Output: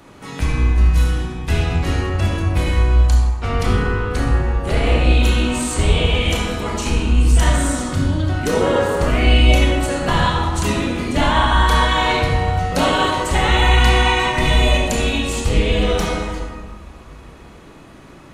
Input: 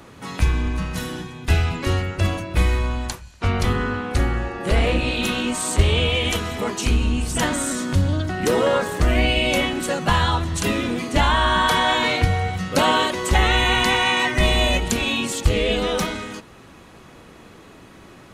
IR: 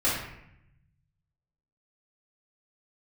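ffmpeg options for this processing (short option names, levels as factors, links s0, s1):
-filter_complex "[0:a]asplit=2[s0][s1];[1:a]atrim=start_sample=2205,asetrate=22491,aresample=44100,adelay=24[s2];[s1][s2]afir=irnorm=-1:irlink=0,volume=0.178[s3];[s0][s3]amix=inputs=2:normalize=0,volume=0.794"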